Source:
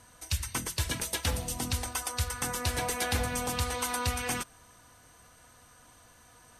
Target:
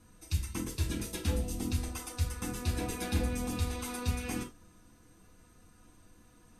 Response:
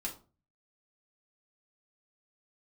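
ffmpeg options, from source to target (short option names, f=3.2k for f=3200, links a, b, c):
-filter_complex "[0:a]lowshelf=f=530:t=q:w=1.5:g=8[a];[1:a]atrim=start_sample=2205,afade=t=out:st=0.15:d=0.01,atrim=end_sample=7056[b];[a][b]afir=irnorm=-1:irlink=0,volume=-7.5dB"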